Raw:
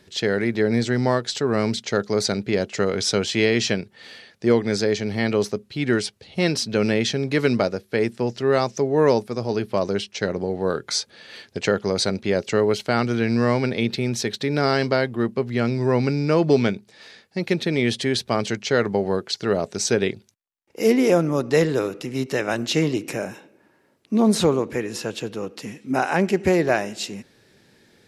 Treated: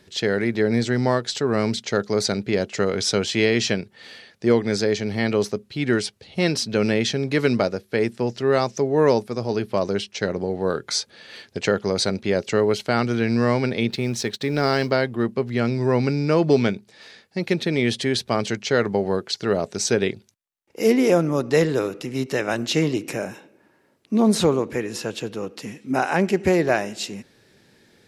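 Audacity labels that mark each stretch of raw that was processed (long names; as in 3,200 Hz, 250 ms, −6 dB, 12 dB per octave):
13.900000	14.910000	mu-law and A-law mismatch coded by A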